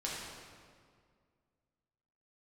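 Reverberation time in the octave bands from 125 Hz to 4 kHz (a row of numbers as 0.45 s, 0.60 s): 2.4 s, 2.3 s, 2.1 s, 1.9 s, 1.6 s, 1.4 s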